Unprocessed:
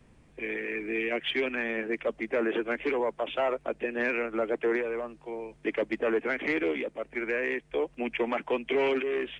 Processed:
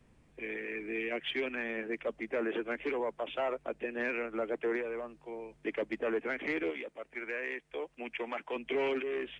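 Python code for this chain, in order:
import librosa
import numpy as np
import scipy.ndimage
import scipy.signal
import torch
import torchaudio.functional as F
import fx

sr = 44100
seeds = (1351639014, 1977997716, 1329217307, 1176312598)

y = fx.low_shelf(x, sr, hz=430.0, db=-9.0, at=(6.7, 8.56))
y = y * 10.0 ** (-5.5 / 20.0)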